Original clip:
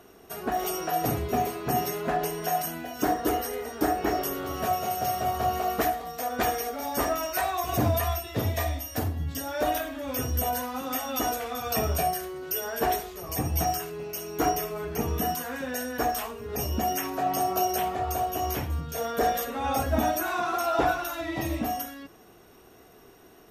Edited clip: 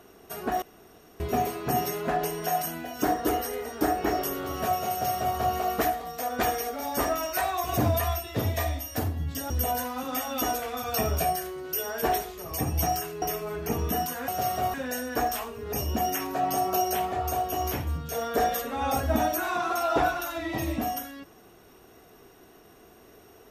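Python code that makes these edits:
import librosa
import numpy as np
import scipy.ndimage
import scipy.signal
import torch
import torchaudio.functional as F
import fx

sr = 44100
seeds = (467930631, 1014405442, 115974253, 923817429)

y = fx.edit(x, sr, fx.room_tone_fill(start_s=0.62, length_s=0.58),
    fx.duplicate(start_s=4.91, length_s=0.46, to_s=15.57),
    fx.cut(start_s=9.5, length_s=0.78),
    fx.cut(start_s=14.0, length_s=0.51), tone=tone)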